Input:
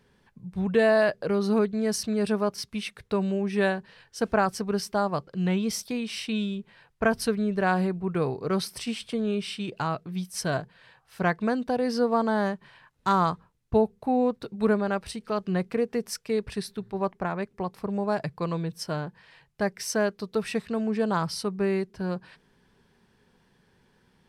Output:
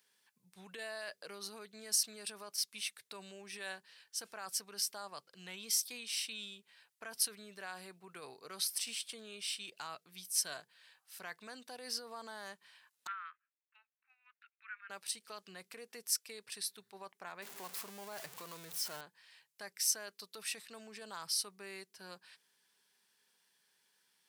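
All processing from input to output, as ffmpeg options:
ffmpeg -i in.wav -filter_complex "[0:a]asettb=1/sr,asplit=3[link_01][link_02][link_03];[link_01]atrim=end=13.074[link_04];[link_02]atrim=start=13.07:end=14.9,asetpts=PTS-STARTPTS,afade=type=in:duration=0.004:curve=qsin,afade=type=out:start_time=1.826:duration=0.004:curve=qsin,asuperpass=centerf=1900:order=8:qfactor=1.4,agate=range=-8dB:threshold=-59dB:ratio=16:release=100:detection=peak[link_05];[link_03]atrim=start=14.896[link_06];[link_04][link_05]acrossfade=duration=0.004:curve1=hsin:curve2=qsin[link_07];[link_07][link_06]acrossfade=duration=0.004:curve1=qsin:curve2=hsin,asettb=1/sr,asplit=3[link_08][link_09][link_10];[link_08]atrim=end=17.424[link_11];[link_09]atrim=start=17.42:end=19.01,asetpts=PTS-STARTPTS,afade=type=in:duration=0.004:curve=qsin,afade=type=out:start_time=1.586:duration=0.004:curve=qsin,aeval=exprs='val(0)+0.5*0.0335*sgn(val(0))':channel_layout=same,highshelf=frequency=2200:gain=-8.5[link_12];[link_10]atrim=start=19.006[link_13];[link_11][link_12]acrossfade=duration=0.004:curve1=hsin:curve2=qsin[link_14];[link_14][link_13]acrossfade=duration=0.004:curve1=qsin:curve2=hsin,alimiter=limit=-21dB:level=0:latency=1:release=22,highpass=110,aderivative,volume=2.5dB" out.wav

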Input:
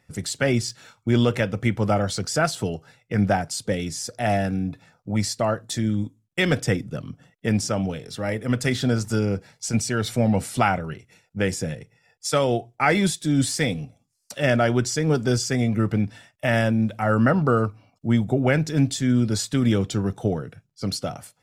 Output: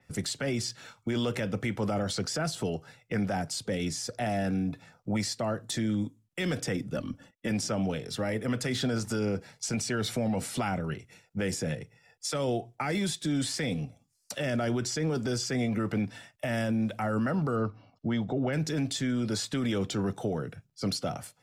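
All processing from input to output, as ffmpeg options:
ffmpeg -i in.wav -filter_complex "[0:a]asettb=1/sr,asplit=3[link_01][link_02][link_03];[link_01]atrim=end=6.944[link_04];[link_02]atrim=start=6.94:end=7.51,asetpts=PTS-STARTPTS,afade=type=in:duration=0.004:curve=qsin,afade=type=out:start_time=0.566:duration=0.004:curve=qsin,agate=range=-12dB:threshold=-57dB:ratio=16:release=100:detection=peak,aecho=1:1:3.5:0.66,atrim=end_sample=25137[link_05];[link_03]atrim=start=7.506[link_06];[link_04][link_05]acrossfade=duration=0.004:curve1=hsin:curve2=qsin[link_07];[link_07][link_06]acrossfade=duration=0.004:curve1=qsin:curve2=hsin,asettb=1/sr,asplit=3[link_08][link_09][link_10];[link_08]atrim=end=17.564[link_11];[link_09]atrim=start=17.56:end=18.53,asetpts=PTS-STARTPTS,afade=type=in:duration=0.004:curve=qsin,afade=type=out:start_time=0.966:duration=0.004:curve=qsin,lowpass=frequency=5100:width=0.5412,lowpass=frequency=5100:width=1.3066,bandreject=frequency=2400:width=6.3[link_12];[link_10]atrim=start=18.526[link_13];[link_11][link_12]acrossfade=duration=0.004:curve1=hsin:curve2=qsin[link_14];[link_14][link_13]acrossfade=duration=0.004:curve1=qsin:curve2=hsin,acrossover=split=140|380|4400[link_15][link_16][link_17][link_18];[link_15]acompressor=threshold=-40dB:ratio=4[link_19];[link_16]acompressor=threshold=-28dB:ratio=4[link_20];[link_17]acompressor=threshold=-28dB:ratio=4[link_21];[link_18]acompressor=threshold=-35dB:ratio=4[link_22];[link_19][link_20][link_21][link_22]amix=inputs=4:normalize=0,alimiter=limit=-22dB:level=0:latency=1:release=16,adynamicequalizer=threshold=0.00398:dfrequency=5900:dqfactor=0.7:tfrequency=5900:tqfactor=0.7:attack=5:release=100:ratio=0.375:range=1.5:mode=cutabove:tftype=highshelf" out.wav

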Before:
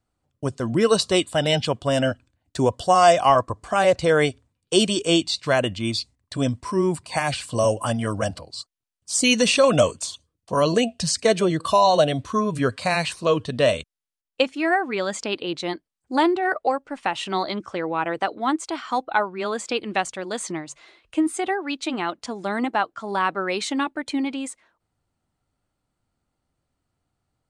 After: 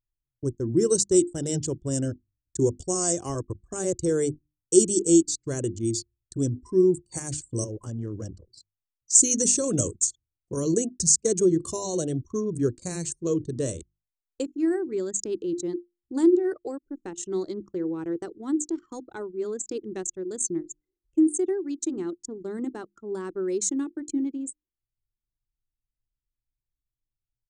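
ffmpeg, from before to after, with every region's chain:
ffmpeg -i in.wav -filter_complex "[0:a]asettb=1/sr,asplit=3[link_01][link_02][link_03];[link_01]atrim=end=7.644[link_04];[link_02]atrim=start=7.64:end=9.15,asetpts=PTS-STARTPTS,afade=type=in:duration=0.004:curve=qsin,afade=type=out:start_time=1.506:duration=0.004:curve=qsin,lowpass=frequency=7100:width=0.5412,lowpass=frequency=7100:width=1.3066,acompressor=threshold=-23dB:ratio=10:attack=3.2:release=140:knee=1:detection=peak,acrusher=bits=7:mode=log:mix=0:aa=0.000001[link_05];[link_03]atrim=start=9.146[link_06];[link_04][link_05]acrossfade=duration=0.004:curve1=hsin:curve2=qsin[link_07];[link_07][link_06]acrossfade=duration=0.004:curve1=qsin:curve2=hsin,bandreject=frequency=50:width_type=h:width=6,bandreject=frequency=100:width_type=h:width=6,bandreject=frequency=150:width_type=h:width=6,bandreject=frequency=200:width_type=h:width=6,bandreject=frequency=250:width_type=h:width=6,bandreject=frequency=300:width_type=h:width=6,bandreject=frequency=350:width_type=h:width=6,anlmdn=25.1,firequalizer=gain_entry='entry(100,0);entry(230,-6);entry(350,5);entry(640,-22);entry(1100,-21);entry(1700,-19);entry(2500,-26);entry(4300,-15);entry(6700,12);entry(11000,-6)':delay=0.05:min_phase=1" out.wav

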